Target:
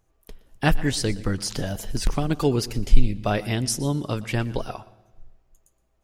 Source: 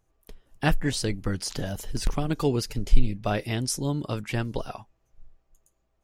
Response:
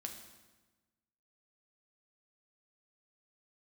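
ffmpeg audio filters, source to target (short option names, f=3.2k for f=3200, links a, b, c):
-filter_complex "[0:a]asplit=2[a][b];[1:a]atrim=start_sample=2205,adelay=119[c];[b][c]afir=irnorm=-1:irlink=0,volume=-15dB[d];[a][d]amix=inputs=2:normalize=0,volume=3dB"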